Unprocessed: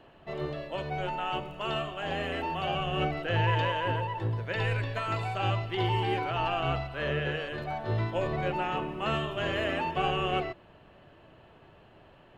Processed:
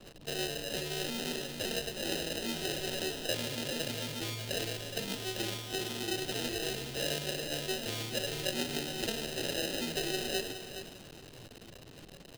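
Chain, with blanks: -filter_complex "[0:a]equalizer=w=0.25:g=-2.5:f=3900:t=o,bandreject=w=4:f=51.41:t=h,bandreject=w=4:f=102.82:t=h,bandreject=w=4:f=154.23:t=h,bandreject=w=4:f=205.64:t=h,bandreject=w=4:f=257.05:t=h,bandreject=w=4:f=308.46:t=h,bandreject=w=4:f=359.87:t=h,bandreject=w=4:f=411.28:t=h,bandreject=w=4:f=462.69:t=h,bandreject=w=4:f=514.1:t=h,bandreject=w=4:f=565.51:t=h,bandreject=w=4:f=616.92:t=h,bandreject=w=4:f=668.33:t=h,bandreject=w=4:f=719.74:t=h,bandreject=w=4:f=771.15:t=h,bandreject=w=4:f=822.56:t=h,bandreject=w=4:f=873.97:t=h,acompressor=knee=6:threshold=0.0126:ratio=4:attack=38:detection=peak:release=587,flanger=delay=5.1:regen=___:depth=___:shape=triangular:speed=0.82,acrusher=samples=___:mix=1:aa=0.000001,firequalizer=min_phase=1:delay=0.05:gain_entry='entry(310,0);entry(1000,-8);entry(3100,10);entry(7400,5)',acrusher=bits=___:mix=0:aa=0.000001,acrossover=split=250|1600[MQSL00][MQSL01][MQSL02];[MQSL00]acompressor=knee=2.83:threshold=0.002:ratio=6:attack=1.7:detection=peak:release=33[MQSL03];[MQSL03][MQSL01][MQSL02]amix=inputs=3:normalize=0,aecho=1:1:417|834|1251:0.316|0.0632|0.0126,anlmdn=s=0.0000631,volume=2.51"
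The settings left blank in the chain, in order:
31, 4.4, 39, 9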